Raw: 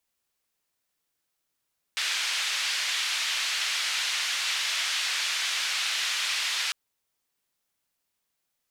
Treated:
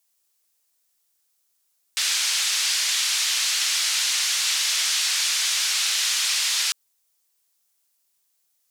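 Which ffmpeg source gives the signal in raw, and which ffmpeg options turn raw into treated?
-f lavfi -i "anoisesrc=color=white:duration=4.75:sample_rate=44100:seed=1,highpass=frequency=1900,lowpass=frequency=4000,volume=-14dB"
-af "bass=frequency=250:gain=-10,treble=frequency=4000:gain=11"

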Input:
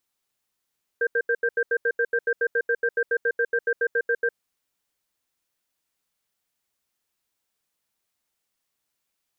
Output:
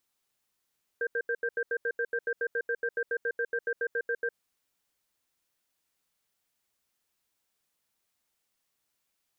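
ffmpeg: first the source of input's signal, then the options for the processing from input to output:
-f lavfi -i "aevalsrc='0.0794*(sin(2*PI*470*t)+sin(2*PI*1580*t))*clip(min(mod(t,0.14),0.06-mod(t,0.14))/0.005,0,1)':duration=3.28:sample_rate=44100"
-af "alimiter=limit=-23.5dB:level=0:latency=1:release=54"

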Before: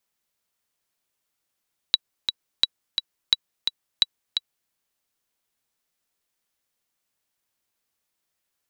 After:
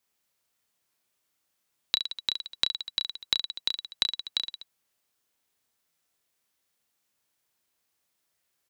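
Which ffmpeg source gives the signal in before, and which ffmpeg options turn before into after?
-f lavfi -i "aevalsrc='pow(10,(-3.5-6*gte(mod(t,2*60/173),60/173))/20)*sin(2*PI*3910*mod(t,60/173))*exp(-6.91*mod(t,60/173)/0.03)':duration=2.77:sample_rate=44100"
-af "aecho=1:1:30|67.5|114.4|173|246.2:0.631|0.398|0.251|0.158|0.1,acompressor=threshold=-24dB:ratio=2.5,highpass=45"

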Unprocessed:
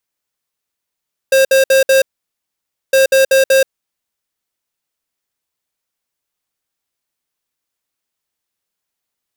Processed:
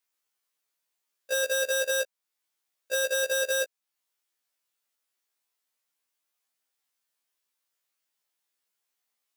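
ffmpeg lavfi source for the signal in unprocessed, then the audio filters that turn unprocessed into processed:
-f lavfi -i "aevalsrc='0.335*(2*lt(mod(534*t,1),0.5)-1)*clip(min(mod(mod(t,1.61),0.19),0.13-mod(mod(t,1.61),0.19))/0.005,0,1)*lt(mod(t,1.61),0.76)':duration=3.22:sample_rate=44100"
-af "alimiter=limit=-18dB:level=0:latency=1:release=453,highpass=frequency=520:poles=1,afftfilt=real='re*1.73*eq(mod(b,3),0)':imag='im*1.73*eq(mod(b,3),0)':win_size=2048:overlap=0.75"

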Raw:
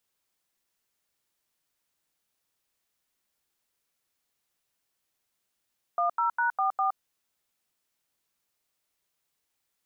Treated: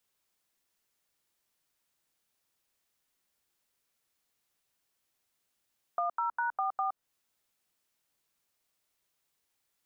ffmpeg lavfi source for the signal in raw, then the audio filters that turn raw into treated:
-f lavfi -i "aevalsrc='0.0531*clip(min(mod(t,0.202),0.117-mod(t,0.202))/0.002,0,1)*(eq(floor(t/0.202),0)*(sin(2*PI*697*mod(t,0.202))+sin(2*PI*1209*mod(t,0.202)))+eq(floor(t/0.202),1)*(sin(2*PI*941*mod(t,0.202))+sin(2*PI*1336*mod(t,0.202)))+eq(floor(t/0.202),2)*(sin(2*PI*941*mod(t,0.202))+sin(2*PI*1477*mod(t,0.202)))+eq(floor(t/0.202),3)*(sin(2*PI*770*mod(t,0.202))+sin(2*PI*1209*mod(t,0.202)))+eq(floor(t/0.202),4)*(sin(2*PI*770*mod(t,0.202))+sin(2*PI*1209*mod(t,0.202))))':duration=1.01:sample_rate=44100"
-filter_complex "[0:a]acrossover=split=430|1600[link_01][link_02][link_03];[link_01]acompressor=threshold=-56dB:ratio=4[link_04];[link_02]acompressor=threshold=-30dB:ratio=4[link_05];[link_03]acompressor=threshold=-52dB:ratio=4[link_06];[link_04][link_05][link_06]amix=inputs=3:normalize=0"

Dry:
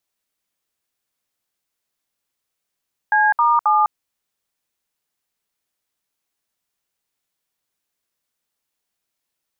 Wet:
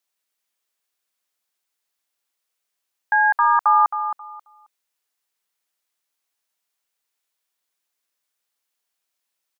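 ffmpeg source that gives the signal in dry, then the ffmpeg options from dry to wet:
-f lavfi -i "aevalsrc='0.178*clip(min(mod(t,0.268),0.204-mod(t,0.268))/0.002,0,1)*(eq(floor(t/0.268),0)*(sin(2*PI*852*mod(t,0.268))+sin(2*PI*1633*mod(t,0.268)))+eq(floor(t/0.268),1)*(sin(2*PI*941*mod(t,0.268))+sin(2*PI*1209*mod(t,0.268)))+eq(floor(t/0.268),2)*(sin(2*PI*852*mod(t,0.268))+sin(2*PI*1209*mod(t,0.268))))':duration=0.804:sample_rate=44100"
-af "highpass=frequency=600:poles=1,aecho=1:1:268|536|804:0.355|0.0781|0.0172"

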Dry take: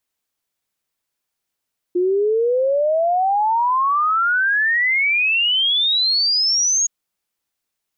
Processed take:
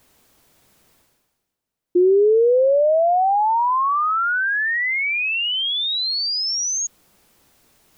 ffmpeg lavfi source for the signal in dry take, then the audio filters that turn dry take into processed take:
-f lavfi -i "aevalsrc='0.188*clip(min(t,4.92-t)/0.01,0,1)*sin(2*PI*350*4.92/log(6700/350)*(exp(log(6700/350)*t/4.92)-1))':duration=4.92:sample_rate=44100"
-af "tiltshelf=frequency=840:gain=5.5,areverse,acompressor=mode=upward:threshold=-37dB:ratio=2.5,areverse"

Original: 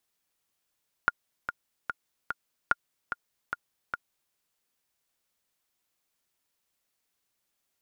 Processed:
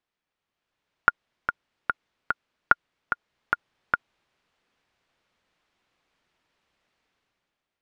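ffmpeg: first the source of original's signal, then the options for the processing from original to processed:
-f lavfi -i "aevalsrc='pow(10,(-8.5-9*gte(mod(t,4*60/147),60/147))/20)*sin(2*PI*1420*mod(t,60/147))*exp(-6.91*mod(t,60/147)/0.03)':duration=3.26:sample_rate=44100"
-af "lowpass=3000,dynaudnorm=framelen=130:gausssize=11:maxgain=12dB"

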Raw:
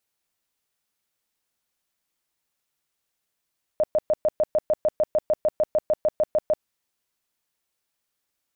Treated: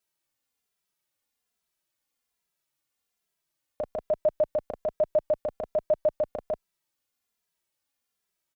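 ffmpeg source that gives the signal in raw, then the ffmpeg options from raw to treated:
-f lavfi -i "aevalsrc='0.15*sin(2*PI*614*mod(t,0.15))*lt(mod(t,0.15),22/614)':duration=2.85:sample_rate=44100"
-filter_complex "[0:a]asplit=2[link_01][link_02];[link_02]adelay=2.6,afreqshift=-1.2[link_03];[link_01][link_03]amix=inputs=2:normalize=1"

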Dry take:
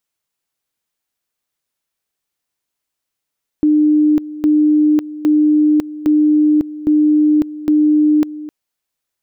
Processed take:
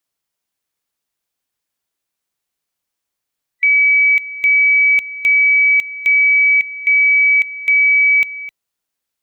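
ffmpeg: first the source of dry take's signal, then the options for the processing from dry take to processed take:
-f lavfi -i "aevalsrc='pow(10,(-8.5-16.5*gte(mod(t,0.81),0.55))/20)*sin(2*PI*302*t)':duration=4.86:sample_rate=44100"
-af "afftfilt=real='real(if(lt(b,920),b+92*(1-2*mod(floor(b/92),2)),b),0)':imag='imag(if(lt(b,920),b+92*(1-2*mod(floor(b/92),2)),b),0)':win_size=2048:overlap=0.75"

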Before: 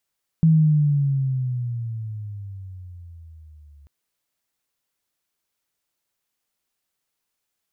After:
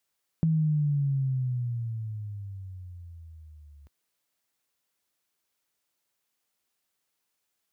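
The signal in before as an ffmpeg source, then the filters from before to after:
-f lavfi -i "aevalsrc='pow(10,(-11-35*t/3.44)/20)*sin(2*PI*163*3.44/(-14.5*log(2)/12)*(exp(-14.5*log(2)/12*t/3.44)-1))':duration=3.44:sample_rate=44100"
-af "highpass=53,equalizer=frequency=110:width=1.1:gain=-3.5,acompressor=threshold=-25dB:ratio=3"

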